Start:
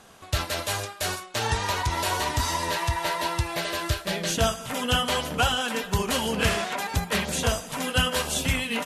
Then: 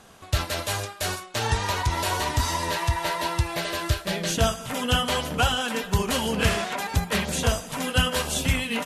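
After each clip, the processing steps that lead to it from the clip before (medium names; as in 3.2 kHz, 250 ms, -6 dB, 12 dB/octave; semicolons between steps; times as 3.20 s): bass shelf 220 Hz +3.5 dB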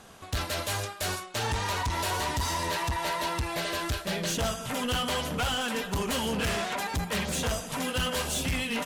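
saturation -25 dBFS, distortion -8 dB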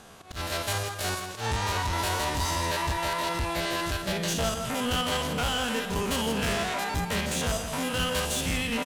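spectrogram pixelated in time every 50 ms; slow attack 111 ms; delay 166 ms -9.5 dB; trim +2.5 dB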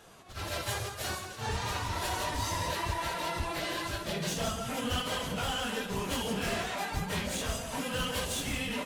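phase randomisation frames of 50 ms; trim -5 dB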